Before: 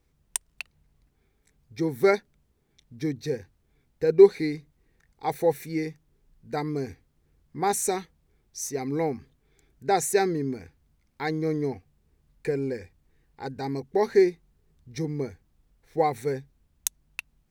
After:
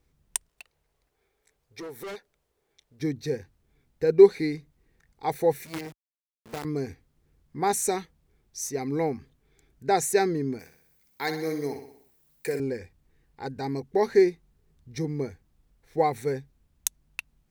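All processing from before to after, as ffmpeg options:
-filter_complex "[0:a]asettb=1/sr,asplit=3[s0][s1][s2];[s0]atrim=end=0.484[s3];[s1]atrim=start=0.48:end=3,asetpts=PTS-STARTPTS,afade=t=in:d=0.004:c=qsin,afade=t=out:st=2.516:d=0.004:c=qsin,lowshelf=f=320:t=q:w=1.5:g=-11,acompressor=threshold=0.0141:ratio=1.5:attack=3.2:release=140:knee=1:detection=peak,asoftclip=type=hard:threshold=0.0178[s4];[s2]atrim=start=2.996[s5];[s3][s4]acrossfade=d=0.004:c1=hsin:c2=qsin[s6];[s6][s5]acrossfade=d=0.004:c1=qsin:c2=hsin,asettb=1/sr,asplit=3[s7][s8][s9];[s7]atrim=end=5.654[s10];[s8]atrim=start=5.65:end=6.65,asetpts=PTS-STARTPTS,afade=t=in:d=0.004:c=qsin,afade=t=out:st=0.996:d=0.004:c=qsin,acrusher=bits=5:dc=4:mix=0:aa=0.000001,acompressor=threshold=0.0355:ratio=6:attack=3.2:release=140:knee=1:detection=peak,highpass=50[s11];[s9]atrim=start=6.646[s12];[s10][s11]acrossfade=d=0.004:c1=hsin:c2=qsin[s13];[s13][s12]acrossfade=d=0.004:c1=qsin:c2=hsin,asettb=1/sr,asplit=3[s14][s15][s16];[s14]atrim=end=10.594[s17];[s15]atrim=start=10.59:end=12.6,asetpts=PTS-STARTPTS,afade=t=in:d=0.004:c=qsin,afade=t=out:st=2.006:d=0.004:c=qsin,aemphasis=mode=production:type=bsi,aecho=1:1:62|124|186|248|310|372:0.355|0.188|0.0997|0.0528|0.028|0.0148,atrim=end_sample=88641[s18];[s16]atrim=start=12.596[s19];[s17][s18]acrossfade=d=0.004:c1=hsin:c2=qsin[s20];[s20][s19]acrossfade=d=0.004:c1=qsin:c2=hsin"

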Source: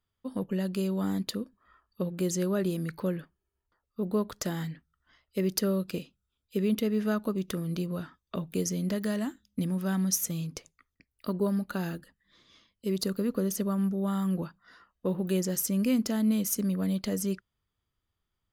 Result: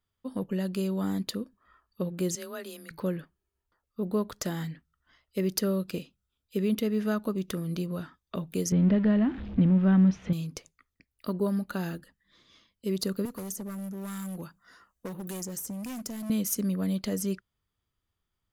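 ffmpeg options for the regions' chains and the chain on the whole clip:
-filter_complex "[0:a]asettb=1/sr,asplit=3[s0][s1][s2];[s0]atrim=end=2.354[s3];[s1]atrim=start=2.35:end=2.91,asetpts=PTS-STARTPTS,afade=t=in:d=0.004:c=qsin,afade=t=out:st=0.556:d=0.004:c=qsin,highpass=f=1400:p=1,afreqshift=24[s4];[s2]atrim=start=2.906[s5];[s3][s4]acrossfade=d=0.004:c1=hsin:c2=qsin[s6];[s6][s5]acrossfade=d=0.004:c1=qsin:c2=hsin,asettb=1/sr,asplit=3[s7][s8][s9];[s7]atrim=end=8.724[s10];[s8]atrim=start=8.72:end=10.33,asetpts=PTS-STARTPTS,afade=t=in:d=0.004:c=qsin,afade=t=out:st=1.606:d=0.004:c=qsin,aeval=exprs='val(0)+0.5*0.0119*sgn(val(0))':c=same,lowpass=f=3000:w=0.5412,lowpass=f=3000:w=1.3066,lowshelf=f=260:g=11[s11];[s9]atrim=start=10.326[s12];[s10][s11]acrossfade=d=0.004:c1=hsin:c2=qsin[s13];[s13][s12]acrossfade=d=0.004:c1=qsin:c2=hsin,asettb=1/sr,asplit=3[s14][s15][s16];[s14]atrim=end=13.254[s17];[s15]atrim=start=13.25:end=16.3,asetpts=PTS-STARTPTS,afade=t=in:d=0.004:c=qsin,afade=t=out:st=3.046:d=0.004:c=qsin,volume=23.7,asoftclip=hard,volume=0.0422,highshelf=f=5300:t=q:w=1.5:g=7,acrossover=split=120|1400[s18][s19][s20];[s18]acompressor=threshold=0.00251:ratio=4[s21];[s19]acompressor=threshold=0.0141:ratio=4[s22];[s20]acompressor=threshold=0.0126:ratio=4[s23];[s21][s22][s23]amix=inputs=3:normalize=0[s24];[s16]atrim=start=16.296[s25];[s17][s24]acrossfade=d=0.004:c1=hsin:c2=qsin[s26];[s26][s25]acrossfade=d=0.004:c1=qsin:c2=hsin"

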